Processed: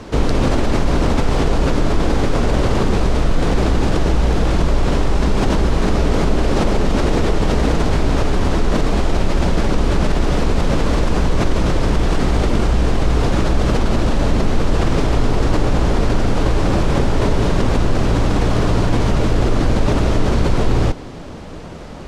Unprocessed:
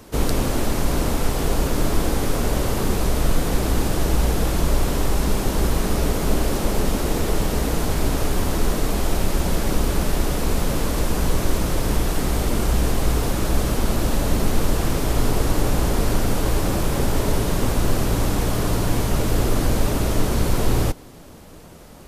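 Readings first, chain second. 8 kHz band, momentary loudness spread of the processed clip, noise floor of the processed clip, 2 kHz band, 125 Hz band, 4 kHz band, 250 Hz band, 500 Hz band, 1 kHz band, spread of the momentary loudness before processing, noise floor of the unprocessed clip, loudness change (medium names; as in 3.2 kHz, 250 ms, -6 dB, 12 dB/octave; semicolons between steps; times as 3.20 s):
-5.0 dB, 1 LU, -31 dBFS, +4.5 dB, +5.0 dB, +2.5 dB, +5.5 dB, +5.0 dB, +5.0 dB, 2 LU, -42 dBFS, +4.5 dB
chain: distance through air 110 m; in parallel at 0 dB: compressor with a negative ratio -25 dBFS; on the sum: trim +1.5 dB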